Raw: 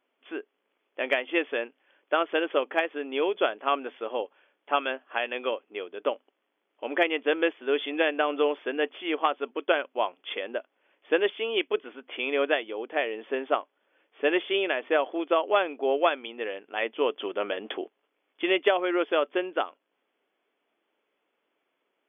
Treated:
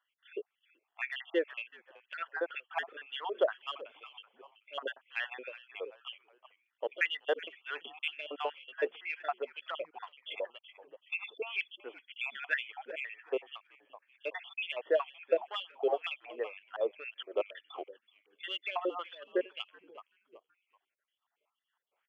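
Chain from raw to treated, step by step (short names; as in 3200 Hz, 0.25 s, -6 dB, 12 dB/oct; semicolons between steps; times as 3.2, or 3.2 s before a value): random spectral dropouts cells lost 58%; in parallel at -9.5 dB: soft clip -25.5 dBFS, distortion -9 dB; on the sum: frequency-shifting echo 0.378 s, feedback 36%, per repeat -78 Hz, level -17 dB; LFO high-pass sine 2 Hz 440–2700 Hz; gain -8.5 dB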